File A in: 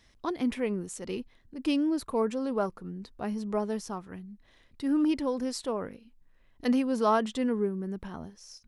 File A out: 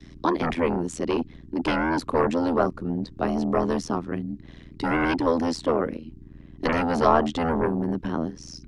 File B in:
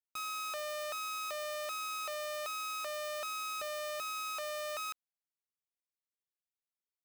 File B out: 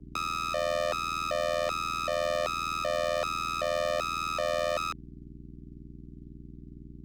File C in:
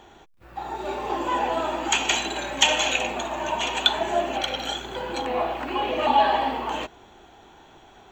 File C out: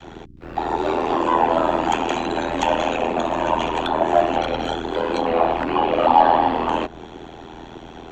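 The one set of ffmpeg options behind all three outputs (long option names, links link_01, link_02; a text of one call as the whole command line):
ffmpeg -i in.wav -filter_complex "[0:a]adynamicequalizer=threshold=0.0112:dfrequency=390:dqfactor=0.77:tfrequency=390:tqfactor=0.77:attack=5:release=100:ratio=0.375:range=2:mode=cutabove:tftype=bell,asplit=2[link_01][link_02];[link_02]aeval=exprs='clip(val(0),-1,0.075)':channel_layout=same,volume=-8.5dB[link_03];[link_01][link_03]amix=inputs=2:normalize=0,acontrast=86,aeval=exprs='val(0)+0.00562*(sin(2*PI*60*n/s)+sin(2*PI*2*60*n/s)/2+sin(2*PI*3*60*n/s)/3+sin(2*PI*4*60*n/s)/4+sin(2*PI*5*60*n/s)/5)':channel_layout=same,apsyclip=4.5dB,tremolo=f=82:d=0.974,acrossover=split=330 6900:gain=0.1 1 0.178[link_04][link_05][link_06];[link_04][link_05][link_06]amix=inputs=3:normalize=0,acrossover=split=290|1300[link_07][link_08][link_09];[link_07]aeval=exprs='0.1*sin(PI/2*6.31*val(0)/0.1)':channel_layout=same[link_10];[link_09]acompressor=threshold=-31dB:ratio=6[link_11];[link_10][link_08][link_11]amix=inputs=3:normalize=0,volume=-1.5dB" out.wav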